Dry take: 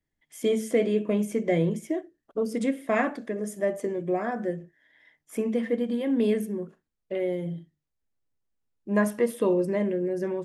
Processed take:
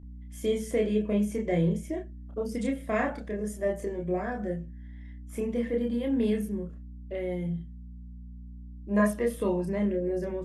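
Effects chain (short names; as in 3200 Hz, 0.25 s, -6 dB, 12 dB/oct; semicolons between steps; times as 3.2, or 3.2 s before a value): hum 60 Hz, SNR 15 dB; chorus voices 6, 0.23 Hz, delay 29 ms, depth 1.2 ms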